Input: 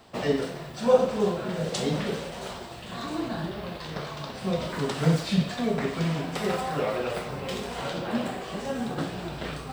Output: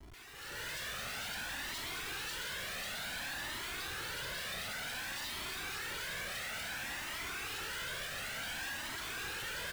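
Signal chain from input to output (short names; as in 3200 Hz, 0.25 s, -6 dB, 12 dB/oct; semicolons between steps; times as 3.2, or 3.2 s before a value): elliptic high-pass 1500 Hz, stop band 40 dB; on a send: feedback echo 0.545 s, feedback 52%, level -7.5 dB; on the sum: compressor 6:1, threshold -48 dBFS, peak gain reduction 17.5 dB; echo 0.234 s -13.5 dB; Schmitt trigger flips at -54 dBFS; AGC gain up to 14 dB; cascading flanger rising 0.56 Hz; gain +1 dB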